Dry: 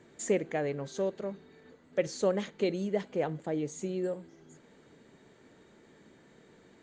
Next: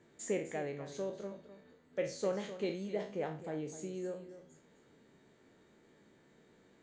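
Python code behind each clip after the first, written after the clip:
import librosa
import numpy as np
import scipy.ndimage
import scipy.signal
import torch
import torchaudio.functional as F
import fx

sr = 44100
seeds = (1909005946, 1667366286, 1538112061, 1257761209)

y = fx.spec_trails(x, sr, decay_s=0.39)
y = y + 10.0 ** (-12.5 / 20.0) * np.pad(y, (int(255 * sr / 1000.0), 0))[:len(y)]
y = F.gain(torch.from_numpy(y), -8.0).numpy()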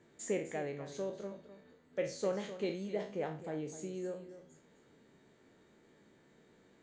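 y = x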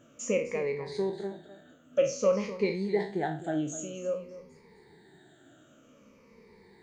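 y = fx.spec_ripple(x, sr, per_octave=0.87, drift_hz=-0.52, depth_db=18)
y = F.gain(torch.from_numpy(y), 4.0).numpy()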